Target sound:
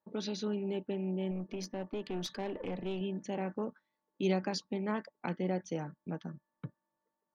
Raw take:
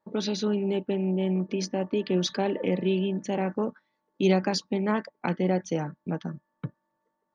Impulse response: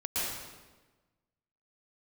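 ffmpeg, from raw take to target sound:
-filter_complex "[0:a]asettb=1/sr,asplit=3[link_01][link_02][link_03];[link_01]atrim=end=1.314[link_04];[link_02]atrim=start=1.31:end=3.01,asetpts=PTS-STARTPTS,afade=type=in:duration=0.004:curve=qsin,afade=type=out:start_time=1.696:duration=0.004:curve=qsin,aeval=exprs='(tanh(12.6*val(0)+0.35)-tanh(0.35))/12.6':channel_layout=same[link_05];[link_03]atrim=start=3.006[link_06];[link_04][link_05]acrossfade=duration=0.004:curve1=hsin:curve2=qsin[link_07];[link_07][link_06]acrossfade=duration=0.004:curve1=qsin:curve2=hsin,volume=-8.5dB"

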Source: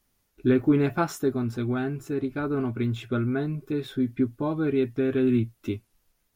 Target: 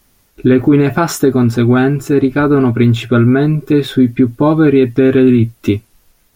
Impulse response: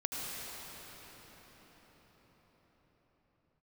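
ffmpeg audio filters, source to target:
-af "alimiter=level_in=18dB:limit=-1dB:release=50:level=0:latency=1,volume=-1dB"

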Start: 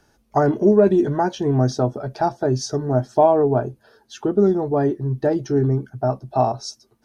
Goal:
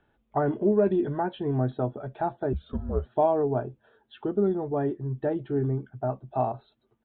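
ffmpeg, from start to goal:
ffmpeg -i in.wav -filter_complex "[0:a]asettb=1/sr,asplit=3[link_01][link_02][link_03];[link_01]atrim=end=2.534[link_04];[link_02]atrim=start=2.53:end=3.06,asetpts=PTS-STARTPTS,afade=type=in:duration=0.004:curve=qsin,afade=type=out:start_time=0.526:duration=0.004:curve=qsin,afreqshift=-200[link_05];[link_03]atrim=start=3.056[link_06];[link_04][link_05]acrossfade=duration=0.004:curve1=hsin:curve2=qsin[link_07];[link_07][link_06]acrossfade=duration=0.004:curve1=qsin:curve2=hsin,aresample=8000,aresample=44100,volume=-8dB" out.wav

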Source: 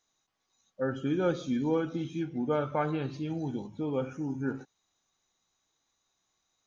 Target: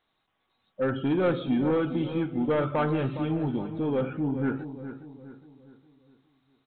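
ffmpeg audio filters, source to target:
ffmpeg -i in.wav -filter_complex "[0:a]aresample=8000,asoftclip=type=tanh:threshold=-25.5dB,aresample=44100,asplit=2[link_01][link_02];[link_02]adelay=412,lowpass=frequency=2000:poles=1,volume=-11dB,asplit=2[link_03][link_04];[link_04]adelay=412,lowpass=frequency=2000:poles=1,volume=0.44,asplit=2[link_05][link_06];[link_06]adelay=412,lowpass=frequency=2000:poles=1,volume=0.44,asplit=2[link_07][link_08];[link_08]adelay=412,lowpass=frequency=2000:poles=1,volume=0.44,asplit=2[link_09][link_10];[link_10]adelay=412,lowpass=frequency=2000:poles=1,volume=0.44[link_11];[link_01][link_03][link_05][link_07][link_09][link_11]amix=inputs=6:normalize=0,volume=6.5dB" out.wav

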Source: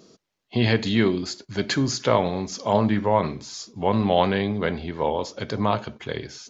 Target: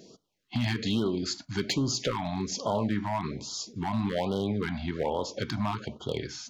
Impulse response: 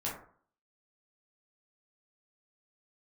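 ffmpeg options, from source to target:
-filter_complex "[0:a]acompressor=threshold=-25dB:ratio=3,asoftclip=type=hard:threshold=-20.5dB,asplit=2[link_01][link_02];[1:a]atrim=start_sample=2205[link_03];[link_02][link_03]afir=irnorm=-1:irlink=0,volume=-25.5dB[link_04];[link_01][link_04]amix=inputs=2:normalize=0,afftfilt=real='re*(1-between(b*sr/1024,410*pow(2100/410,0.5+0.5*sin(2*PI*1.2*pts/sr))/1.41,410*pow(2100/410,0.5+0.5*sin(2*PI*1.2*pts/sr))*1.41))':imag='im*(1-between(b*sr/1024,410*pow(2100/410,0.5+0.5*sin(2*PI*1.2*pts/sr))/1.41,410*pow(2100/410,0.5+0.5*sin(2*PI*1.2*pts/sr))*1.41))':win_size=1024:overlap=0.75"

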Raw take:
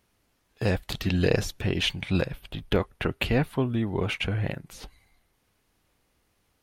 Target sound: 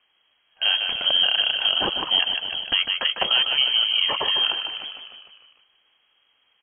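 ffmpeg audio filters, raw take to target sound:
ffmpeg -i in.wav -filter_complex "[0:a]asplit=2[link_01][link_02];[link_02]asplit=7[link_03][link_04][link_05][link_06][link_07][link_08][link_09];[link_03]adelay=151,afreqshift=30,volume=-7dB[link_10];[link_04]adelay=302,afreqshift=60,volume=-11.7dB[link_11];[link_05]adelay=453,afreqshift=90,volume=-16.5dB[link_12];[link_06]adelay=604,afreqshift=120,volume=-21.2dB[link_13];[link_07]adelay=755,afreqshift=150,volume=-25.9dB[link_14];[link_08]adelay=906,afreqshift=180,volume=-30.7dB[link_15];[link_09]adelay=1057,afreqshift=210,volume=-35.4dB[link_16];[link_10][link_11][link_12][link_13][link_14][link_15][link_16]amix=inputs=7:normalize=0[link_17];[link_01][link_17]amix=inputs=2:normalize=0,lowpass=frequency=2800:width_type=q:width=0.5098,lowpass=frequency=2800:width_type=q:width=0.6013,lowpass=frequency=2800:width_type=q:width=0.9,lowpass=frequency=2800:width_type=q:width=2.563,afreqshift=-3300,alimiter=level_in=12.5dB:limit=-1dB:release=50:level=0:latency=1,volume=-8dB" out.wav

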